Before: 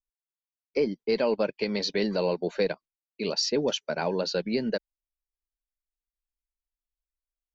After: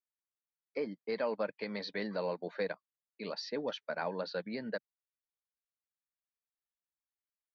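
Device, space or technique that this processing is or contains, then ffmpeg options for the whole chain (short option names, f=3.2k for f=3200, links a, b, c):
guitar cabinet: -af "highpass=110,equalizer=f=150:t=q:w=4:g=-8,equalizer=f=240:t=q:w=4:g=-4,equalizer=f=380:t=q:w=4:g=-9,equalizer=f=1.2k:t=q:w=4:g=5,equalizer=f=1.8k:t=q:w=4:g=5,equalizer=f=2.8k:t=q:w=4:g=-9,lowpass=f=4k:w=0.5412,lowpass=f=4k:w=1.3066,volume=-7dB"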